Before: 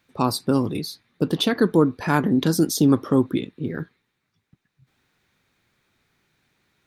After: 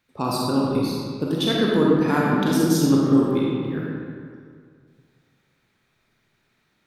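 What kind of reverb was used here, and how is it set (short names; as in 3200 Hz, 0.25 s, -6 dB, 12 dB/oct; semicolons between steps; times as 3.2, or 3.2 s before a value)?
digital reverb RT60 2.1 s, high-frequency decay 0.65×, pre-delay 5 ms, DRR -4.5 dB; gain -5 dB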